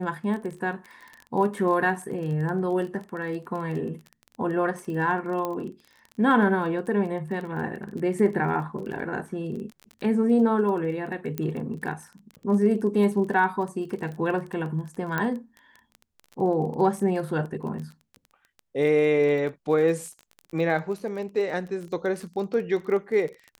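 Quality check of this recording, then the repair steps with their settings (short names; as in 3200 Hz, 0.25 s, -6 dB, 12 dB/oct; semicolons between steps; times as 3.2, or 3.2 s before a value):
crackle 21/s -33 dBFS
5.45 pop -16 dBFS
11.38 pop -14 dBFS
15.18 pop -13 dBFS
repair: de-click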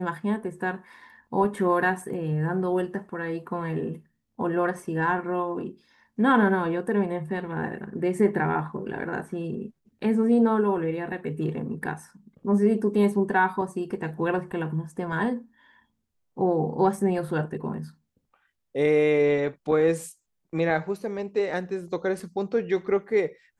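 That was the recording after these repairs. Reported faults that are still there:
15.18 pop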